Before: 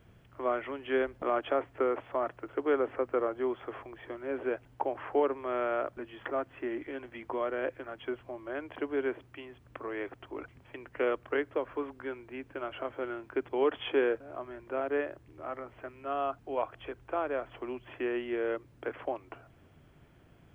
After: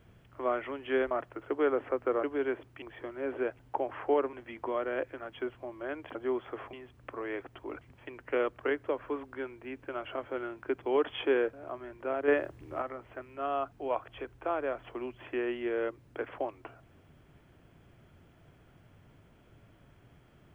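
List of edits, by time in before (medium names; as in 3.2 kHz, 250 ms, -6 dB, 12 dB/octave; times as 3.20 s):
1.11–2.18 s: delete
3.30–3.88 s: swap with 8.81–9.40 s
5.39–6.99 s: delete
14.95–15.49 s: gain +6 dB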